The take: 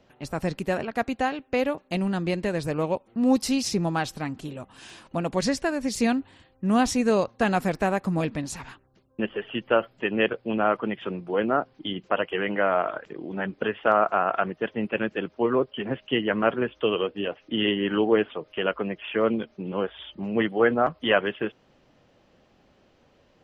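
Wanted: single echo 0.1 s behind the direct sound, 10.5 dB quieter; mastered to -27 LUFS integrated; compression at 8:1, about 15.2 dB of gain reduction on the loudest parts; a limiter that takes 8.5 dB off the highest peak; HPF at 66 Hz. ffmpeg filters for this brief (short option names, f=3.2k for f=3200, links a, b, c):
-af "highpass=66,acompressor=threshold=-31dB:ratio=8,alimiter=level_in=1.5dB:limit=-24dB:level=0:latency=1,volume=-1.5dB,aecho=1:1:100:0.299,volume=10dB"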